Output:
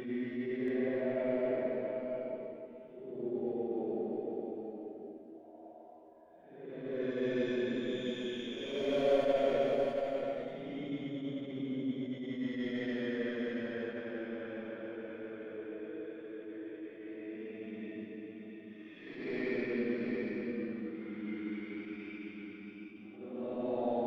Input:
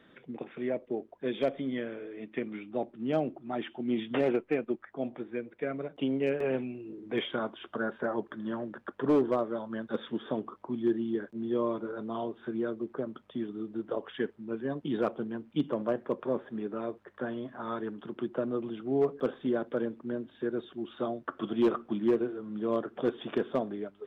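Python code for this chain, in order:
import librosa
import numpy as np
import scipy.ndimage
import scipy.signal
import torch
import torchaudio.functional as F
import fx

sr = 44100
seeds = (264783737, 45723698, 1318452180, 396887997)

p1 = fx.tracing_dist(x, sr, depth_ms=0.051)
p2 = fx.comb_fb(p1, sr, f0_hz=80.0, decay_s=0.37, harmonics='all', damping=0.0, mix_pct=60)
p3 = fx.paulstretch(p2, sr, seeds[0], factor=11.0, window_s=0.1, from_s=0.61)
p4 = p3 + fx.echo_single(p3, sr, ms=681, db=-5.5, dry=0)
p5 = fx.attack_slew(p4, sr, db_per_s=110.0)
y = p5 * librosa.db_to_amplitude(2.0)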